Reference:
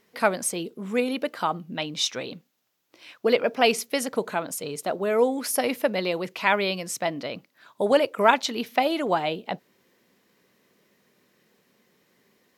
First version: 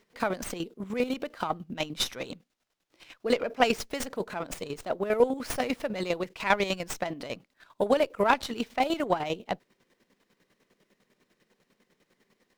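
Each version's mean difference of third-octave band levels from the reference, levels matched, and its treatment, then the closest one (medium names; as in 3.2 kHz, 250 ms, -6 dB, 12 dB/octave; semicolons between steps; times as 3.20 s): 5.5 dB: square tremolo 10 Hz, depth 65%, duty 35%; sliding maximum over 3 samples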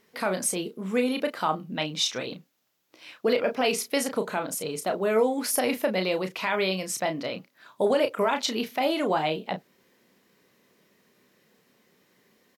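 3.0 dB: peak limiter -14.5 dBFS, peak gain reduction 12 dB; doubling 32 ms -7.5 dB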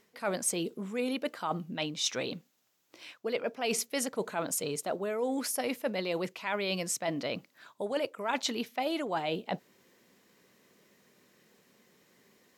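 4.0 dB: reverse; compression 8:1, threshold -29 dBFS, peak gain reduction 17 dB; reverse; peaking EQ 7.3 kHz +4 dB 0.63 oct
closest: second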